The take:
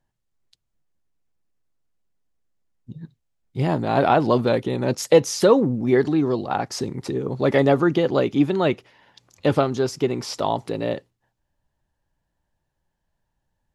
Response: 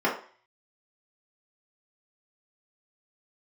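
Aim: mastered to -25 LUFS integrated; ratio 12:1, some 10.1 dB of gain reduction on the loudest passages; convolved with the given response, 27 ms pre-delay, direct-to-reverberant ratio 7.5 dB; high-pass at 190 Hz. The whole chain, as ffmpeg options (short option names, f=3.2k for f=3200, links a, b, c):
-filter_complex "[0:a]highpass=190,acompressor=threshold=-19dB:ratio=12,asplit=2[a][b];[1:a]atrim=start_sample=2205,adelay=27[c];[b][c]afir=irnorm=-1:irlink=0,volume=-22dB[d];[a][d]amix=inputs=2:normalize=0"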